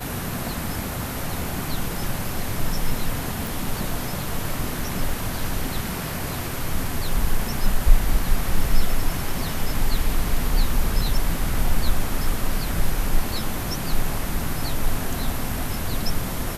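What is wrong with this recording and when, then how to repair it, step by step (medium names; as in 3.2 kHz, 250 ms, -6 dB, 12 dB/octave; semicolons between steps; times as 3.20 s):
3.47 s: pop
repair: de-click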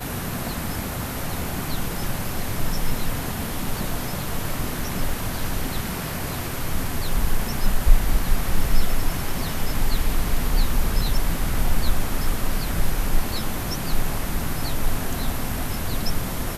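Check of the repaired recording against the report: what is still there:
nothing left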